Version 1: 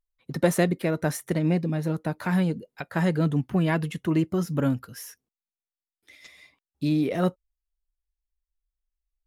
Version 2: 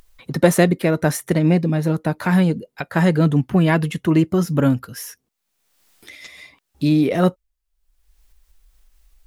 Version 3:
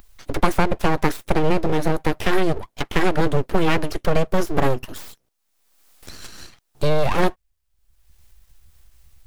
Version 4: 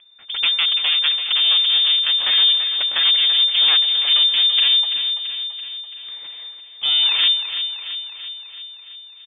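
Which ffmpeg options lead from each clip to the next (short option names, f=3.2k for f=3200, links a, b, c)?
-af "acompressor=mode=upward:threshold=-42dB:ratio=2.5,volume=7.5dB"
-filter_complex "[0:a]acrossover=split=160|2200[a][b][c];[a]acompressor=threshold=-33dB:ratio=4[d];[b]acompressor=threshold=-17dB:ratio=4[e];[c]acompressor=threshold=-39dB:ratio=4[f];[d][e][f]amix=inputs=3:normalize=0,aeval=exprs='abs(val(0))':c=same,volume=4.5dB"
-filter_complex "[0:a]asplit=2[a][b];[b]aecho=0:1:335|670|1005|1340|1675|2010|2345:0.335|0.201|0.121|0.0724|0.0434|0.026|0.0156[c];[a][c]amix=inputs=2:normalize=0,lowpass=f=3.1k:t=q:w=0.5098,lowpass=f=3.1k:t=q:w=0.6013,lowpass=f=3.1k:t=q:w=0.9,lowpass=f=3.1k:t=q:w=2.563,afreqshift=-3600,volume=-2.5dB"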